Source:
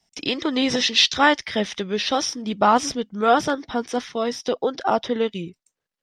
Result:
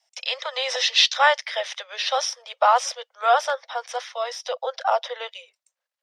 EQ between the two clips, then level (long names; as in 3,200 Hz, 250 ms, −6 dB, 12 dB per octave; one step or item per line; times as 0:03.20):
Butterworth high-pass 510 Hz 96 dB per octave
high-shelf EQ 9,300 Hz −4 dB
0.0 dB